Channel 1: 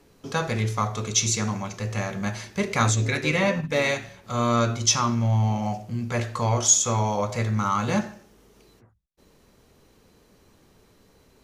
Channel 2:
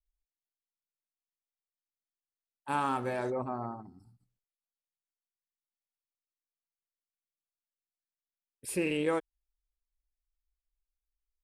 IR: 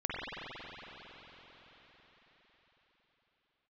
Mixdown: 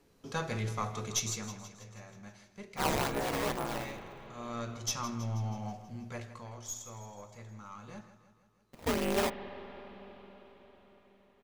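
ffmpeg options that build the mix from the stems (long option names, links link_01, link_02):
-filter_complex "[0:a]bandreject=frequency=60:width_type=h:width=6,bandreject=frequency=120:width_type=h:width=6,aeval=exprs='0.562*(cos(1*acos(clip(val(0)/0.562,-1,1)))-cos(1*PI/2))+0.0562*(cos(4*acos(clip(val(0)/0.562,-1,1)))-cos(4*PI/2))':channel_layout=same,volume=-0.5dB,afade=type=out:start_time=1.07:duration=0.6:silence=0.223872,afade=type=in:start_time=4.27:duration=0.73:silence=0.375837,afade=type=out:start_time=6.06:duration=0.42:silence=0.316228,asplit=2[link_01][link_02];[link_02]volume=-13.5dB[link_03];[1:a]lowpass=2600,acrusher=samples=18:mix=1:aa=0.000001:lfo=1:lforange=28.8:lforate=2.2,aeval=exprs='val(0)*sgn(sin(2*PI*100*n/s))':channel_layout=same,adelay=100,volume=-1dB,asplit=2[link_04][link_05];[link_05]volume=-17dB[link_06];[2:a]atrim=start_sample=2205[link_07];[link_06][link_07]afir=irnorm=-1:irlink=0[link_08];[link_03]aecho=0:1:161|322|483|644|805|966|1127|1288|1449:1|0.59|0.348|0.205|0.121|0.0715|0.0422|0.0249|0.0147[link_09];[link_01][link_04][link_08][link_09]amix=inputs=4:normalize=0"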